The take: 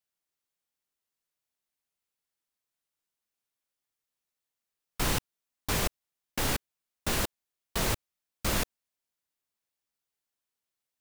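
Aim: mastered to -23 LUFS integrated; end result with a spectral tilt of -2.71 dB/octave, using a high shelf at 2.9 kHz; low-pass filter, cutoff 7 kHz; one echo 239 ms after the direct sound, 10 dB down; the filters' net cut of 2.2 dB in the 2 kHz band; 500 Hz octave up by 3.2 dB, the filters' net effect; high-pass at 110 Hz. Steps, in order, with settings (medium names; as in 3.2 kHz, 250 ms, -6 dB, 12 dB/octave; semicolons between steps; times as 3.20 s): high-pass 110 Hz; low-pass 7 kHz; peaking EQ 500 Hz +4 dB; peaking EQ 2 kHz -5.5 dB; treble shelf 2.9 kHz +6 dB; delay 239 ms -10 dB; trim +9.5 dB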